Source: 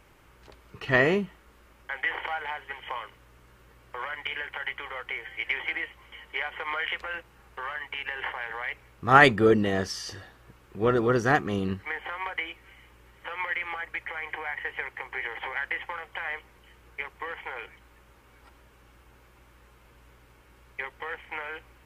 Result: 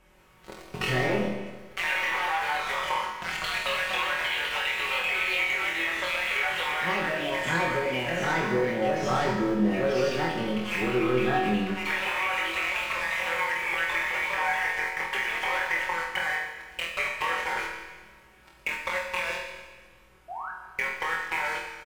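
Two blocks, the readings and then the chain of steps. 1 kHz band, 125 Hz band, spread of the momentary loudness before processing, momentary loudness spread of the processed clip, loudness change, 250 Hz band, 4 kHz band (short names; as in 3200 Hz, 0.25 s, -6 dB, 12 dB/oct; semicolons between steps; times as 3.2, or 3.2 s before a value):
+1.5 dB, -1.0 dB, 16 LU, 7 LU, +1.5 dB, +1.5 dB, +6.5 dB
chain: treble ducked by the level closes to 1400 Hz, closed at -23 dBFS; echoes that change speed 0.144 s, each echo +2 st, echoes 3; sample leveller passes 3; compressor 12:1, threshold -29 dBFS, peak gain reduction 19.5 dB; painted sound rise, 20.28–20.51, 640–1700 Hz -40 dBFS; comb 5.4 ms, depth 59%; flutter echo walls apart 4.1 m, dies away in 0.38 s; Schroeder reverb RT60 1.4 s, combs from 27 ms, DRR 4 dB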